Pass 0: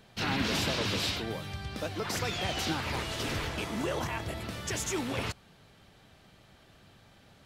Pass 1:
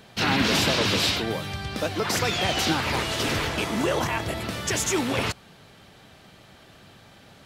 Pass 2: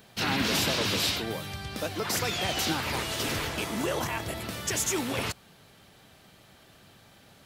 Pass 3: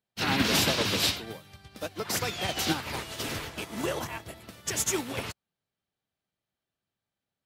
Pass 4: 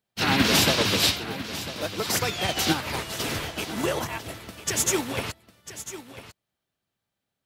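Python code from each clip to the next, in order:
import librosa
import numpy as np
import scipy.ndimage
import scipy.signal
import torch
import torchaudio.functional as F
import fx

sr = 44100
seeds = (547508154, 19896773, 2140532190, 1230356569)

y1 = fx.low_shelf(x, sr, hz=73.0, db=-9.0)
y1 = y1 * librosa.db_to_amplitude(8.5)
y2 = fx.high_shelf(y1, sr, hz=9400.0, db=11.5)
y2 = y2 * librosa.db_to_amplitude(-5.5)
y3 = fx.upward_expand(y2, sr, threshold_db=-50.0, expansion=2.5)
y3 = y3 * librosa.db_to_amplitude(4.0)
y4 = y3 + 10.0 ** (-13.5 / 20.0) * np.pad(y3, (int(998 * sr / 1000.0), 0))[:len(y3)]
y4 = y4 * librosa.db_to_amplitude(4.5)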